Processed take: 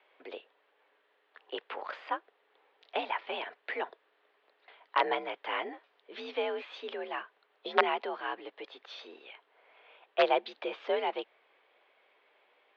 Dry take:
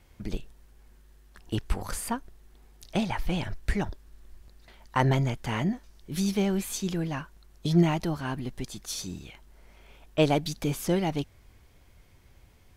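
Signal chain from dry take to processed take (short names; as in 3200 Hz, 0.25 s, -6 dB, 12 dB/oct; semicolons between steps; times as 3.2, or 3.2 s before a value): wrapped overs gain 11.5 dB; mistuned SSB +57 Hz 390–3400 Hz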